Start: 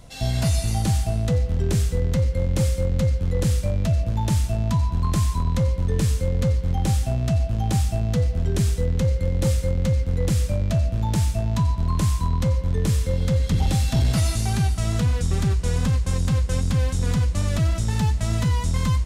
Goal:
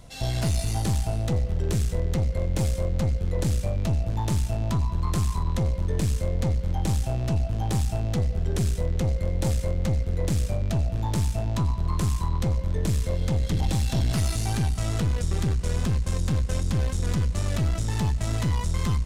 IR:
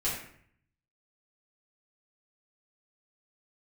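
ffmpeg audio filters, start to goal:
-af "aeval=exprs='(tanh(8.91*val(0)+0.45)-tanh(0.45))/8.91':channel_layout=same"

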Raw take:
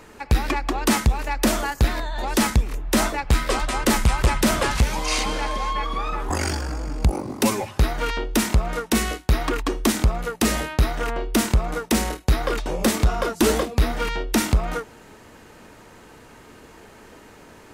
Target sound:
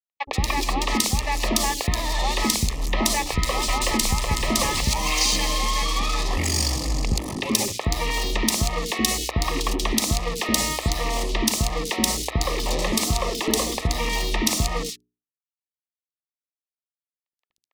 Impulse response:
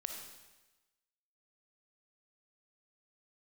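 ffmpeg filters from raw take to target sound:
-filter_complex "[0:a]asettb=1/sr,asplit=3[link_01][link_02][link_03];[link_01]atrim=end=5.234[link_04];[link_02]atrim=start=5.23:end=7.68,asetpts=PTS-STARTPTS,afade=type=in:duration=0.004:curve=qsin,afade=type=out:start_time=2.446:duration=0.004:curve=qsin,equalizer=frequency=900:width=1:gain=-6.5[link_05];[link_03]atrim=start=7.676[link_06];[link_04][link_05]acrossfade=duration=0.004:curve1=hsin:curve2=qsin[link_07];[link_07][link_06]acrossfade=duration=0.004:curve1=qsin:curve2=hsin,acrusher=bits=4:mix=0:aa=0.5,acompressor=threshold=-24dB:ratio=6,asuperstop=centerf=1500:order=12:qfactor=3.6,equalizer=frequency=4700:width=0.67:gain=7.5,bandreject=frequency=60:width_type=h:width=6,bandreject=frequency=120:width_type=h:width=6,bandreject=frequency=180:width_type=h:width=6,bandreject=frequency=240:width_type=h:width=6,bandreject=frequency=300:width_type=h:width=6,bandreject=frequency=360:width_type=h:width=6,bandreject=frequency=420:width_type=h:width=6,acrossover=split=440|3100[link_08][link_09][link_10];[link_08]adelay=70[link_11];[link_10]adelay=130[link_12];[link_11][link_09][link_12]amix=inputs=3:normalize=0,volume=5dB"

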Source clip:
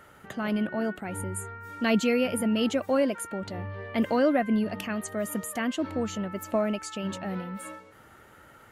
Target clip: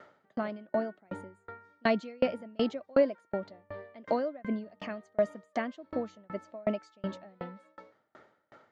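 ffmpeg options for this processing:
ffmpeg -i in.wav -af "highpass=180,equalizer=frequency=620:width_type=q:width=4:gain=7,equalizer=frequency=1500:width_type=q:width=4:gain=-3,equalizer=frequency=2800:width_type=q:width=4:gain=-8,lowpass=frequency=5200:width=0.5412,lowpass=frequency=5200:width=1.3066,aeval=exprs='val(0)*pow(10,-34*if(lt(mod(2.7*n/s,1),2*abs(2.7)/1000),1-mod(2.7*n/s,1)/(2*abs(2.7)/1000),(mod(2.7*n/s,1)-2*abs(2.7)/1000)/(1-2*abs(2.7)/1000))/20)':channel_layout=same,volume=2dB" out.wav

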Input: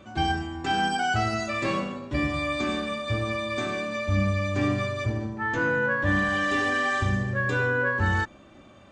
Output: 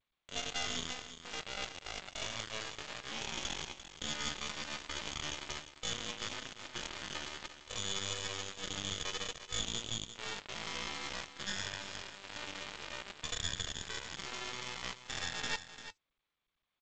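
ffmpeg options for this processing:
ffmpeg -i in.wav -af "areverse,acompressor=threshold=-37dB:ratio=12,areverse,adynamicequalizer=threshold=0.00224:dfrequency=1200:dqfactor=1:tfrequency=1200:tqfactor=1:attack=5:release=100:ratio=0.375:range=1.5:mode=cutabove:tftype=bell,lowpass=frequency=3100:width_type=q:width=0.5098,lowpass=frequency=3100:width_type=q:width=0.6013,lowpass=frequency=3100:width_type=q:width=0.9,lowpass=frequency=3100:width_type=q:width=2.563,afreqshift=-3600,acrusher=bits=3:dc=4:mix=0:aa=0.000001,atempo=0.53,flanger=delay=1.1:depth=4:regen=-65:speed=1.7:shape=sinusoidal,aecho=1:1:346:0.251,volume=10.5dB" -ar 16000 -c:a g722 out.g722

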